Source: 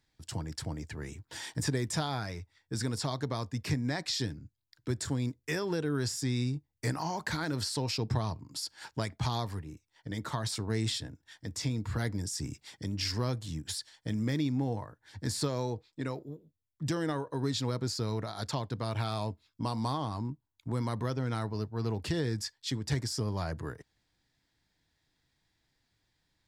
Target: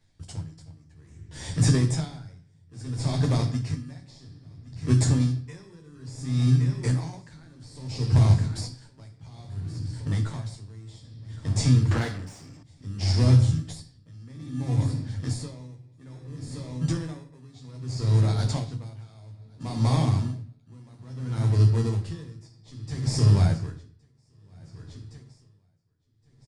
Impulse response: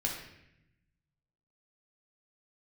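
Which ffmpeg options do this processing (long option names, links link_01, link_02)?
-filter_complex "[0:a]asplit=2[link_01][link_02];[link_02]acrusher=samples=30:mix=1:aa=0.000001,volume=-4dB[link_03];[link_01][link_03]amix=inputs=2:normalize=0,aecho=1:1:1116|2232|3348|4464:0.158|0.0666|0.028|0.0117,aresample=22050,aresample=44100,asplit=2[link_04][link_05];[link_05]bass=frequency=250:gain=11,treble=frequency=4000:gain=11[link_06];[1:a]atrim=start_sample=2205,adelay=11[link_07];[link_06][link_07]afir=irnorm=-1:irlink=0,volume=-7.5dB[link_08];[link_04][link_08]amix=inputs=2:normalize=0,asettb=1/sr,asplit=3[link_09][link_10][link_11];[link_09]atrim=end=11.914[link_12];[link_10]atrim=start=11.91:end=12.63,asetpts=PTS-STARTPTS,afade=type=in:duration=0.004:curve=qsin,afade=type=out:start_time=0.716:duration=0.004:curve=qsin,asplit=2[link_13][link_14];[link_14]highpass=frequency=720:poles=1,volume=27dB,asoftclip=type=tanh:threshold=-8.5dB[link_15];[link_13][link_15]amix=inputs=2:normalize=0,lowpass=frequency=2200:poles=1,volume=-6dB[link_16];[link_11]atrim=start=12.626[link_17];[link_12][link_16]acrossfade=duration=0.004:curve1=hsin:curve2=qsin[link_18];[link_18][link_17]acrossfade=duration=0.004:curve1=qsin:curve2=hsin,aeval=exprs='val(0)*pow(10,-27*(0.5-0.5*cos(2*PI*0.6*n/s))/20)':channel_layout=same,volume=1dB"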